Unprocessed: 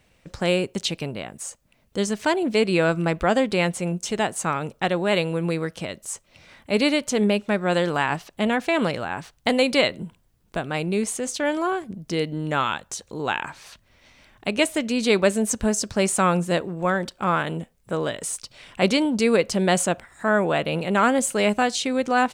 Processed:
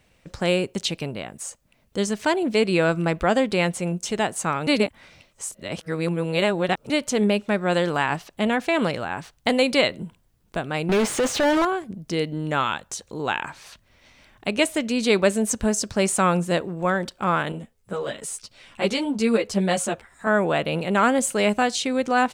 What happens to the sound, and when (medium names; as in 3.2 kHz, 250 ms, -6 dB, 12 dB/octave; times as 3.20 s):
4.67–6.90 s: reverse
10.89–11.65 s: overdrive pedal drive 32 dB, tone 2.1 kHz, clips at -13 dBFS
17.52–20.27 s: three-phase chorus